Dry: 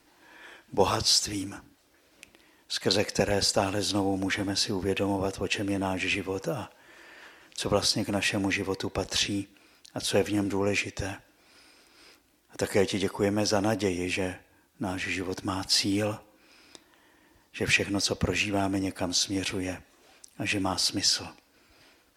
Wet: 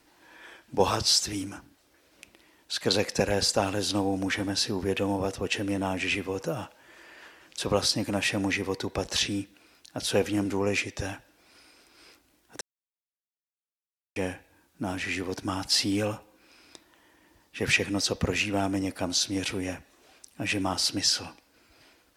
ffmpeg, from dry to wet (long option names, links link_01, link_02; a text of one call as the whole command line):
ffmpeg -i in.wav -filter_complex "[0:a]asplit=3[link_01][link_02][link_03];[link_01]atrim=end=12.61,asetpts=PTS-STARTPTS,afade=type=out:start_time=12.606:duration=0.004:curve=hsin[link_04];[link_02]atrim=start=12.61:end=14.16,asetpts=PTS-STARTPTS,volume=0[link_05];[link_03]atrim=start=14.16,asetpts=PTS-STARTPTS,afade=type=in:duration=0.004:curve=hsin[link_06];[link_04][link_05][link_06]concat=n=3:v=0:a=1" out.wav